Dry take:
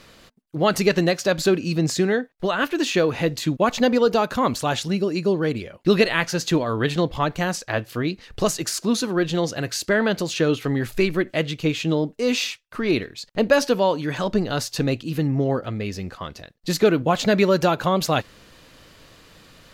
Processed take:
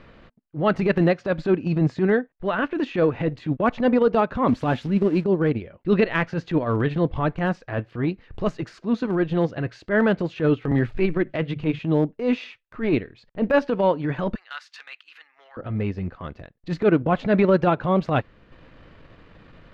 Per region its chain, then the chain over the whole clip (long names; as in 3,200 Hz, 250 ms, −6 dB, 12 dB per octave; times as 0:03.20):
0:04.48–0:05.24: spike at every zero crossing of −20.5 dBFS + parametric band 250 Hz +8 dB 0.48 octaves
0:10.71–0:11.79: mains-hum notches 50/100/150 Hz + multiband upward and downward compressor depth 40%
0:14.35–0:15.57: high-pass filter 1,300 Hz 24 dB per octave + high-shelf EQ 11,000 Hz +9.5 dB
whole clip: Chebyshev low-pass filter 2,200 Hz, order 2; spectral tilt −1.5 dB per octave; transient designer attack −11 dB, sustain −7 dB; level +1.5 dB